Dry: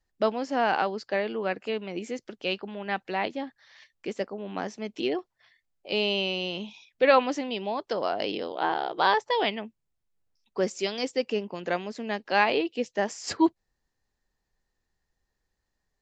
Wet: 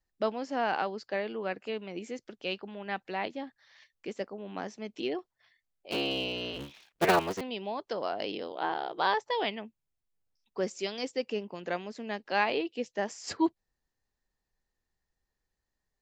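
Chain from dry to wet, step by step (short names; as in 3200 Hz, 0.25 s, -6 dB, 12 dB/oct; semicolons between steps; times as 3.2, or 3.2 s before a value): 5.91–7.41 cycle switcher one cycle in 3, inverted; gain -5 dB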